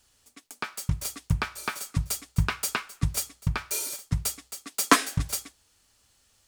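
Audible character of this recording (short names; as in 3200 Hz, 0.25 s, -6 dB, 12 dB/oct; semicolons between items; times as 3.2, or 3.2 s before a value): noise floor -66 dBFS; spectral tilt -3.5 dB/oct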